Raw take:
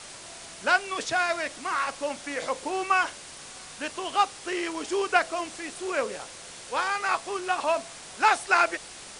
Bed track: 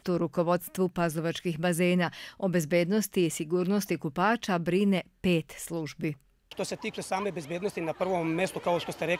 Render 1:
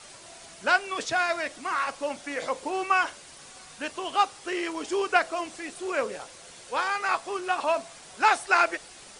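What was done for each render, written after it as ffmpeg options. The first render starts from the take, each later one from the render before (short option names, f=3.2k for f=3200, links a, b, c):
-af "afftdn=nr=6:nf=-44"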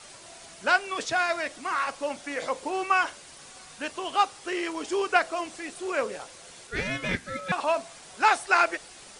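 -filter_complex "[0:a]asettb=1/sr,asplit=3[a][b][c];[a]atrim=end=6.674[d];[b]atrim=start=6.67:end=7.52,asetpts=PTS-STARTPTS,afade=t=in:d=0.004:c=qsin,afade=t=out:st=0.846:d=0.004:c=qsin,aeval=exprs='val(0)*sin(2*PI*930*n/s)':c=same[e];[c]atrim=start=7.516[f];[d][e]acrossfade=d=0.004:c1=hsin:c2=qsin[g];[g][f]acrossfade=d=0.004:c1=qsin:c2=hsin"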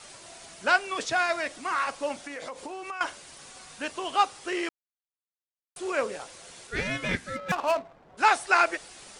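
-filter_complex "[0:a]asettb=1/sr,asplit=3[a][b][c];[a]atrim=end=2.214[d];[b]atrim=start=2.21:end=3.01,asetpts=PTS-STARTPTS,afade=t=in:d=0.004:c=qsin,afade=t=out:st=0.796:d=0.004:c=qsin,acompressor=threshold=-34dB:ratio=6:attack=3.2:release=140:knee=1:detection=peak[e];[c]atrim=start=3.006[f];[d][e]acrossfade=d=0.004:c1=hsin:c2=qsin[g];[g][f]acrossfade=d=0.004:c1=qsin:c2=hsin,asplit=3[h][i][j];[h]afade=t=out:st=7.35:d=0.02[k];[i]adynamicsmooth=sensitivity=5.5:basefreq=670,afade=t=in:st=7.35:d=0.02,afade=t=out:st=8.17:d=0.02[l];[j]afade=t=in:st=8.17:d=0.02[m];[k][l][m]amix=inputs=3:normalize=0,asplit=3[n][o][p];[n]atrim=end=4.69,asetpts=PTS-STARTPTS,afade=t=out:st=4.686:d=0.004:c=hsin[q];[o]atrim=start=4.69:end=5.76,asetpts=PTS-STARTPTS,volume=0[r];[p]atrim=start=5.76,asetpts=PTS-STARTPTS,afade=t=in:d=0.004:c=hsin[s];[q][r][s]concat=n=3:v=0:a=1"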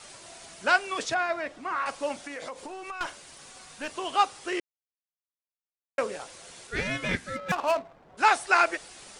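-filter_complex "[0:a]asettb=1/sr,asplit=3[a][b][c];[a]atrim=end=1.144[d];[b]atrim=start=1.14:end=1.86,asetpts=PTS-STARTPTS,afade=t=in:d=0.004:c=qsin,afade=t=out:st=0.716:d=0.004:c=qsin,lowpass=f=1.5k:p=1[e];[c]atrim=start=1.856[f];[d][e]acrossfade=d=0.004:c1=hsin:c2=qsin[g];[g][f]acrossfade=d=0.004:c1=qsin:c2=hsin,asettb=1/sr,asplit=3[h][i][j];[h]atrim=end=2.544[k];[i]atrim=start=2.54:end=3.91,asetpts=PTS-STARTPTS,afade=t=in:d=0.004:c=qsin,afade=t=out:st=1.366:d=0.004:c=qsin,aeval=exprs='(tanh(15.8*val(0)+0.35)-tanh(0.35))/15.8':c=same[l];[j]atrim=start=3.906[m];[k][l]acrossfade=d=0.004:c1=hsin:c2=qsin[n];[n][m]acrossfade=d=0.004:c1=qsin:c2=hsin,asplit=3[o][p][q];[o]atrim=end=4.6,asetpts=PTS-STARTPTS,afade=t=out:st=4.596:d=0.004:c=hsin[r];[p]atrim=start=4.6:end=5.98,asetpts=PTS-STARTPTS,volume=0[s];[q]atrim=start=5.98,asetpts=PTS-STARTPTS,afade=t=in:d=0.004:c=hsin[t];[r][s][t]concat=n=3:v=0:a=1"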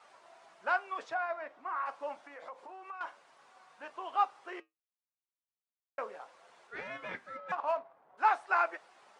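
-af "flanger=delay=4:depth=3.8:regen=-74:speed=0.32:shape=triangular,bandpass=f=960:t=q:w=1.4:csg=0"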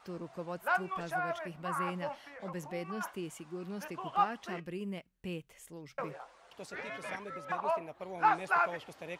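-filter_complex "[1:a]volume=-14.5dB[a];[0:a][a]amix=inputs=2:normalize=0"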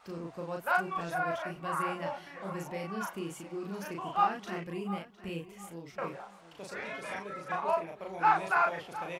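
-filter_complex "[0:a]asplit=2[a][b];[b]adelay=36,volume=-2dB[c];[a][c]amix=inputs=2:normalize=0,asplit=2[d][e];[e]adelay=708,lowpass=f=5k:p=1,volume=-15dB,asplit=2[f][g];[g]adelay=708,lowpass=f=5k:p=1,volume=0.31,asplit=2[h][i];[i]adelay=708,lowpass=f=5k:p=1,volume=0.31[j];[d][f][h][j]amix=inputs=4:normalize=0"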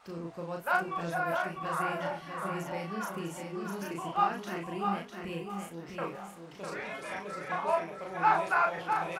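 -filter_complex "[0:a]asplit=2[a][b];[b]adelay=24,volume=-13dB[c];[a][c]amix=inputs=2:normalize=0,asplit=2[d][e];[e]aecho=0:1:652|1304|1956|2608:0.531|0.149|0.0416|0.0117[f];[d][f]amix=inputs=2:normalize=0"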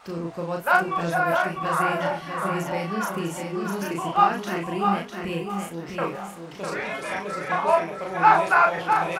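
-af "volume=9dB"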